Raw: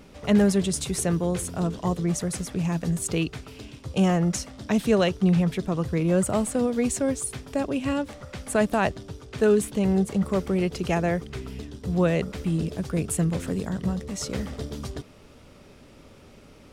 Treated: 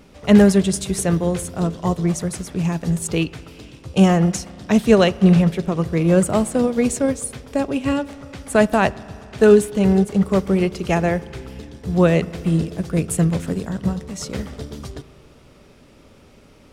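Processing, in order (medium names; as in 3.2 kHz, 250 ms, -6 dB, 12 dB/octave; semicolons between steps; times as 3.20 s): spring tank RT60 3.2 s, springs 36 ms, chirp 80 ms, DRR 14 dB; upward expansion 1.5:1, over -32 dBFS; trim +9 dB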